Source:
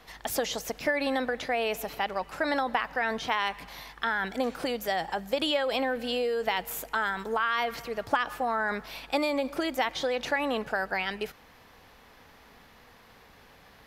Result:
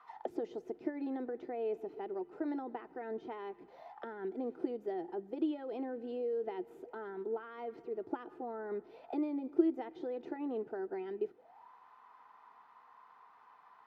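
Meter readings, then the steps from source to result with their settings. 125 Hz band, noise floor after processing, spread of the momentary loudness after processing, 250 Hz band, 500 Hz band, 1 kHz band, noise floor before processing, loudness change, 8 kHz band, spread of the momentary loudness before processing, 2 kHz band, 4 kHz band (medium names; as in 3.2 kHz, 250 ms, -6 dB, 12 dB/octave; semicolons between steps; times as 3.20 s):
under -10 dB, -62 dBFS, 10 LU, -3.0 dB, -7.5 dB, -16.0 dB, -55 dBFS, -10.0 dB, under -35 dB, 5 LU, -25.0 dB, under -25 dB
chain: comb of notches 560 Hz; auto-wah 360–1200 Hz, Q 9.1, down, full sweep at -33.5 dBFS; trim +9 dB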